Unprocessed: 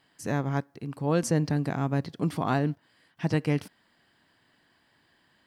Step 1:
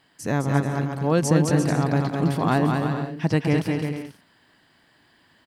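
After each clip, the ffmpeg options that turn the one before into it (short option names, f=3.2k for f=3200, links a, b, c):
-af "aecho=1:1:210|346.5|435.2|492.9|530.4:0.631|0.398|0.251|0.158|0.1,volume=4.5dB"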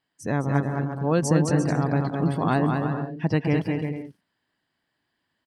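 -af "afftdn=nr=16:nf=-39,volume=-1.5dB"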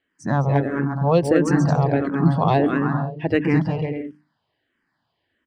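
-filter_complex "[0:a]adynamicsmooth=sensitivity=2:basefreq=4.5k,bandreject=f=50:t=h:w=6,bandreject=f=100:t=h:w=6,bandreject=f=150:t=h:w=6,bandreject=f=200:t=h:w=6,bandreject=f=250:t=h:w=6,bandreject=f=300:t=h:w=6,asplit=2[a][b];[b]afreqshift=-1.5[c];[a][c]amix=inputs=2:normalize=1,volume=8dB"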